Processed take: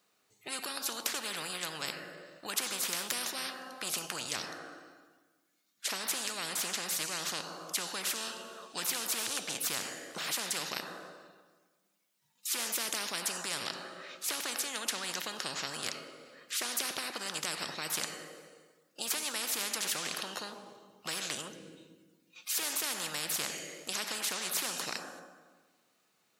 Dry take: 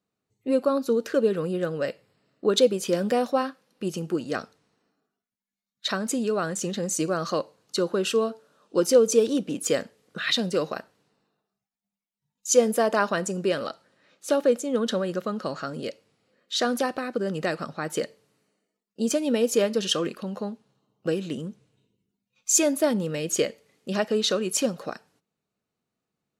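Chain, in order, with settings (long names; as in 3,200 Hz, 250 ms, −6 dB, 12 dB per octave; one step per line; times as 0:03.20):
high-pass filter 1,200 Hz 6 dB per octave
convolution reverb RT60 1.4 s, pre-delay 4 ms, DRR 16 dB
every bin compressed towards the loudest bin 10 to 1
level −3 dB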